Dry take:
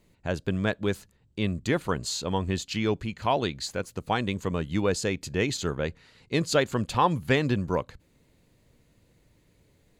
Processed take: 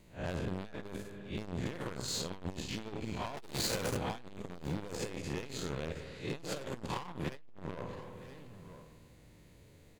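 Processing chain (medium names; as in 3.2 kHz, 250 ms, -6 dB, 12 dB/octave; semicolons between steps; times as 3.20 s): spectral blur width 141 ms; in parallel at -3 dB: compression, threshold -40 dBFS, peak gain reduction 17 dB; 3.37–3.97 s: on the sum: waveshaping leveller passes 5; hard clipper -30.5 dBFS, distortion -5 dB; vibrato 9.1 Hz 22 cents; on a send: delay 970 ms -20 dB; on the sum: spring tank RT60 1.9 s, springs 50/56 ms, chirp 55 ms, DRR 8.5 dB; transformer saturation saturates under 170 Hz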